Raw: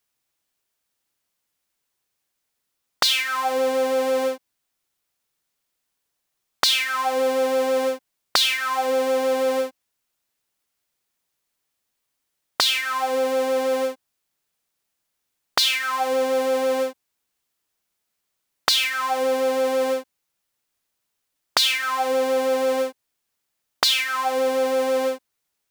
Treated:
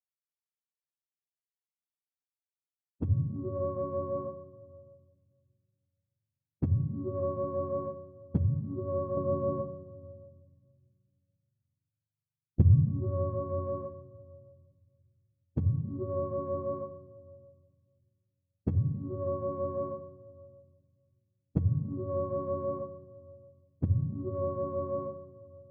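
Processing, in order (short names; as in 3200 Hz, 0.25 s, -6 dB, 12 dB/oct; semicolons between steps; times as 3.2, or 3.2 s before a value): spectrum mirrored in octaves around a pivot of 540 Hz; expander -17 dBFS; low-pass opened by the level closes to 630 Hz, open at -22.5 dBFS; 9.17–12.89 low shelf 330 Hz +9.5 dB; shoebox room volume 2200 m³, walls mixed, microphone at 0.55 m; gain -6.5 dB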